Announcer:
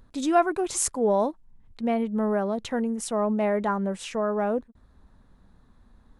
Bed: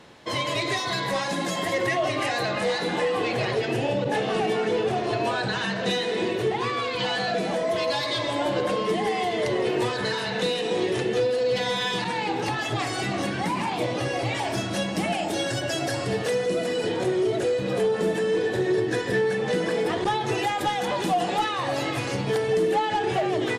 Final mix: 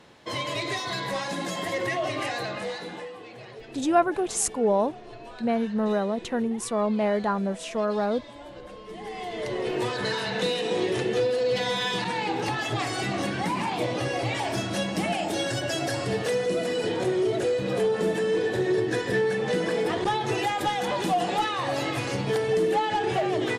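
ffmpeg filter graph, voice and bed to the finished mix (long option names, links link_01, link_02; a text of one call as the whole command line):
ffmpeg -i stem1.wav -i stem2.wav -filter_complex "[0:a]adelay=3600,volume=0dB[link_01];[1:a]volume=13.5dB,afade=type=out:start_time=2.23:duration=0.96:silence=0.188365,afade=type=in:start_time=8.86:duration=1.24:silence=0.141254[link_02];[link_01][link_02]amix=inputs=2:normalize=0" out.wav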